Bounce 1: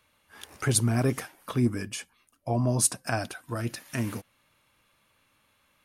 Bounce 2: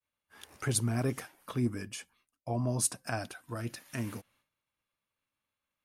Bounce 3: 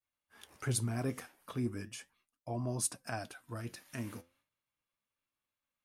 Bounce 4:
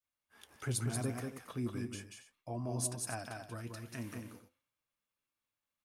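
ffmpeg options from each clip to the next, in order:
-af "agate=range=0.0224:threshold=0.00141:ratio=3:detection=peak,volume=0.501"
-af "flanger=delay=2.7:depth=9.6:regen=76:speed=0.37:shape=sinusoidal"
-af "aecho=1:1:185|275:0.596|0.211,volume=0.75"

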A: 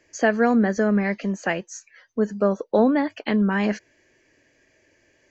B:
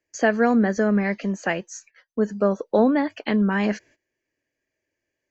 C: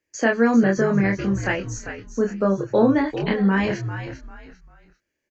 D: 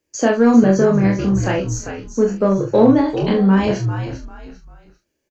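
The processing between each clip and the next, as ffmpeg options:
-af "agate=range=0.1:threshold=0.00355:ratio=16:detection=peak"
-filter_complex "[0:a]equalizer=f=700:w=4.6:g=-6,asplit=2[s0][s1];[s1]adelay=26,volume=0.708[s2];[s0][s2]amix=inputs=2:normalize=0,asplit=4[s3][s4][s5][s6];[s4]adelay=396,afreqshift=-80,volume=0.316[s7];[s5]adelay=792,afreqshift=-160,volume=0.0944[s8];[s6]adelay=1188,afreqshift=-240,volume=0.0285[s9];[s3][s7][s8][s9]amix=inputs=4:normalize=0"
-filter_complex "[0:a]equalizer=f=1900:t=o:w=0.78:g=-11,asplit=2[s0][s1];[s1]asoftclip=type=tanh:threshold=0.0596,volume=0.355[s2];[s0][s2]amix=inputs=2:normalize=0,asplit=2[s3][s4];[s4]adelay=42,volume=0.447[s5];[s3][s5]amix=inputs=2:normalize=0,volume=1.58"

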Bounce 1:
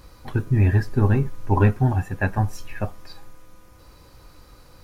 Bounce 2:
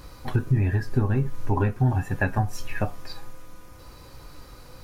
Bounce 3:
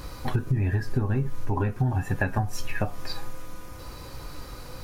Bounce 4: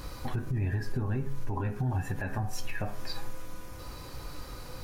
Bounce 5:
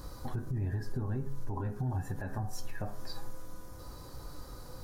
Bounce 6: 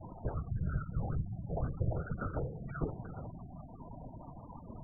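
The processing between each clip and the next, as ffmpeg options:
-af "acompressor=threshold=0.0708:ratio=6,flanger=delay=6.7:depth=1.6:regen=76:speed=1.4:shape=triangular,volume=2.51"
-af "acompressor=threshold=0.0398:ratio=4,volume=1.88"
-af "bandreject=f=68.68:t=h:w=4,bandreject=f=137.36:t=h:w=4,bandreject=f=206.04:t=h:w=4,bandreject=f=274.72:t=h:w=4,bandreject=f=343.4:t=h:w=4,bandreject=f=412.08:t=h:w=4,bandreject=f=480.76:t=h:w=4,bandreject=f=549.44:t=h:w=4,bandreject=f=618.12:t=h:w=4,bandreject=f=686.8:t=h:w=4,bandreject=f=755.48:t=h:w=4,bandreject=f=824.16:t=h:w=4,bandreject=f=892.84:t=h:w=4,bandreject=f=961.52:t=h:w=4,bandreject=f=1030.2:t=h:w=4,bandreject=f=1098.88:t=h:w=4,bandreject=f=1167.56:t=h:w=4,bandreject=f=1236.24:t=h:w=4,bandreject=f=1304.92:t=h:w=4,bandreject=f=1373.6:t=h:w=4,bandreject=f=1442.28:t=h:w=4,bandreject=f=1510.96:t=h:w=4,bandreject=f=1579.64:t=h:w=4,bandreject=f=1648.32:t=h:w=4,bandreject=f=1717:t=h:w=4,bandreject=f=1785.68:t=h:w=4,bandreject=f=1854.36:t=h:w=4,bandreject=f=1923.04:t=h:w=4,bandreject=f=1991.72:t=h:w=4,bandreject=f=2060.4:t=h:w=4,bandreject=f=2129.08:t=h:w=4,bandreject=f=2197.76:t=h:w=4,bandreject=f=2266.44:t=h:w=4,bandreject=f=2335.12:t=h:w=4,bandreject=f=2403.8:t=h:w=4,bandreject=f=2472.48:t=h:w=4,bandreject=f=2541.16:t=h:w=4,alimiter=limit=0.0891:level=0:latency=1:release=63,volume=0.794"
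-af "equalizer=f=2500:w=1.6:g=-12.5,volume=0.668"
-af "afftfilt=real='hypot(re,im)*cos(2*PI*random(0))':imag='hypot(re,im)*sin(2*PI*random(1))':win_size=512:overlap=0.75,highpass=f=170:t=q:w=0.5412,highpass=f=170:t=q:w=1.307,lowpass=f=2300:t=q:w=0.5176,lowpass=f=2300:t=q:w=0.7071,lowpass=f=2300:t=q:w=1.932,afreqshift=-300,afftfilt=real='re*gte(hypot(re,im),0.00224)':imag='im*gte(hypot(re,im),0.00224)':win_size=1024:overlap=0.75,volume=3.55"

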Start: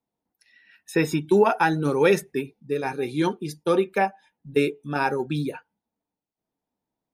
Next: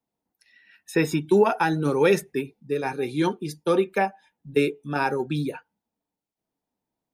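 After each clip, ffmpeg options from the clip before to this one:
-filter_complex "[0:a]acrossover=split=470|3000[s0][s1][s2];[s1]acompressor=threshold=0.112:ratio=6[s3];[s0][s3][s2]amix=inputs=3:normalize=0"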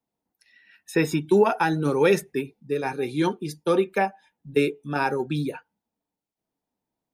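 -af anull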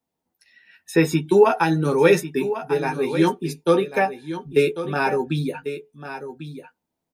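-filter_complex "[0:a]asplit=2[s0][s1];[s1]adelay=12,volume=0.562[s2];[s0][s2]amix=inputs=2:normalize=0,aecho=1:1:1095:0.266,volume=1.26"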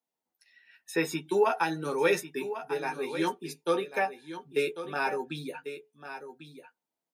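-af "highpass=f=560:p=1,volume=0.501"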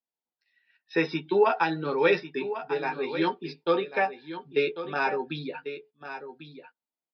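-af "aresample=11025,aresample=44100,agate=range=0.251:threshold=0.00178:ratio=16:detection=peak,volume=1.41"

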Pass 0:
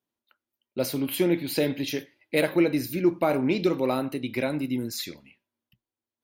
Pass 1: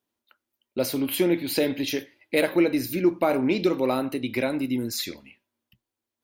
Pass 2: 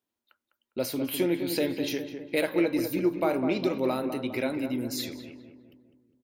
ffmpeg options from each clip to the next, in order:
-filter_complex "[0:a]equalizer=f=150:t=o:w=0.28:g=-9.5,asplit=2[s0][s1];[s1]acompressor=threshold=0.0224:ratio=6,volume=0.708[s2];[s0][s2]amix=inputs=2:normalize=0"
-filter_complex "[0:a]asplit=2[s0][s1];[s1]adelay=203,lowpass=f=1500:p=1,volume=0.447,asplit=2[s2][s3];[s3]adelay=203,lowpass=f=1500:p=1,volume=0.54,asplit=2[s4][s5];[s5]adelay=203,lowpass=f=1500:p=1,volume=0.54,asplit=2[s6][s7];[s7]adelay=203,lowpass=f=1500:p=1,volume=0.54,asplit=2[s8][s9];[s9]adelay=203,lowpass=f=1500:p=1,volume=0.54,asplit=2[s10][s11];[s11]adelay=203,lowpass=f=1500:p=1,volume=0.54,asplit=2[s12][s13];[s13]adelay=203,lowpass=f=1500:p=1,volume=0.54[s14];[s0][s2][s4][s6][s8][s10][s12][s14]amix=inputs=8:normalize=0,volume=0.596"

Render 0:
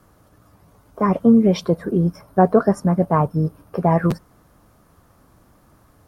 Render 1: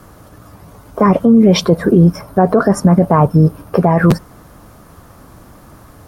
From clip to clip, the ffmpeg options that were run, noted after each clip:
-af "alimiter=level_in=5.31:limit=0.891:release=50:level=0:latency=1,volume=0.891"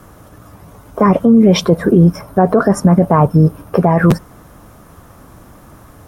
-af "equalizer=f=4500:t=o:w=0.24:g=-5.5"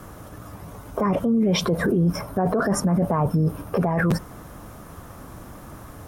-af "alimiter=limit=0.2:level=0:latency=1:release=21"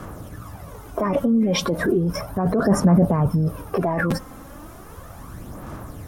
-af "aphaser=in_gain=1:out_gain=1:delay=3.8:decay=0.49:speed=0.35:type=sinusoidal"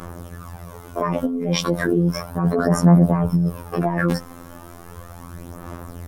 -af "afftfilt=real='hypot(re,im)*cos(PI*b)':imag='0':win_size=2048:overlap=0.75,volume=1.58"

